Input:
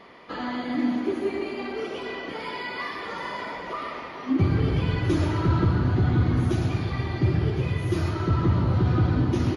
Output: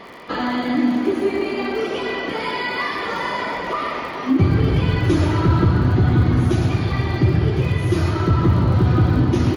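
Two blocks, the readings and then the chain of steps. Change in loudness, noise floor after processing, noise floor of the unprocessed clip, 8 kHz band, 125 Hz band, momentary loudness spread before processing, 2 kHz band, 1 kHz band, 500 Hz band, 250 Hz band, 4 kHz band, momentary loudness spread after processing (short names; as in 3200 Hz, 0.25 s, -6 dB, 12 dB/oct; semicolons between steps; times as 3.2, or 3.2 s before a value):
+6.5 dB, -28 dBFS, -37 dBFS, n/a, +6.0 dB, 11 LU, +8.0 dB, +7.5 dB, +7.0 dB, +6.5 dB, +7.5 dB, 8 LU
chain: in parallel at 0 dB: compressor, threshold -29 dBFS, peak gain reduction 11.5 dB; on the sum: crackle 58/s -37 dBFS; gain +3.5 dB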